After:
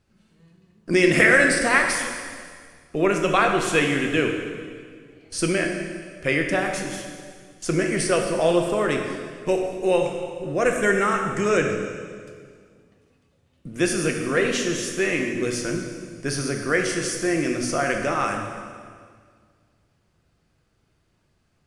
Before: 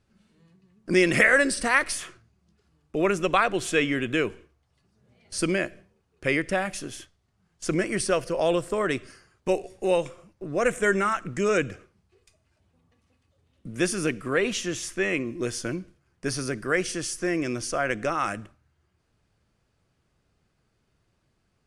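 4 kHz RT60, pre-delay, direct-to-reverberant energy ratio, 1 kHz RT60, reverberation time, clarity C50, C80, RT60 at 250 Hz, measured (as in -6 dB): 1.8 s, 5 ms, 2.0 dB, 1.8 s, 1.9 s, 4.5 dB, 5.5 dB, 2.2 s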